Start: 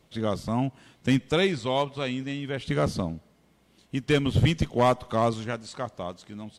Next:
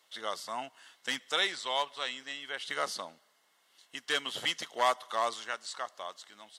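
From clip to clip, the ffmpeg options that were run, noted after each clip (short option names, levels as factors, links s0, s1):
-af "highpass=1100,bandreject=f=2400:w=5.9,volume=1.19"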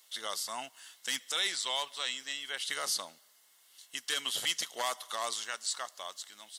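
-af "alimiter=limit=0.0794:level=0:latency=1:release=27,crystalizer=i=4.5:c=0,volume=0.596"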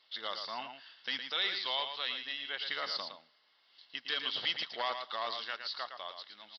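-filter_complex "[0:a]asplit=2[s0][s1];[s1]aecho=0:1:113:0.422[s2];[s0][s2]amix=inputs=2:normalize=0,aresample=11025,aresample=44100,volume=0.891"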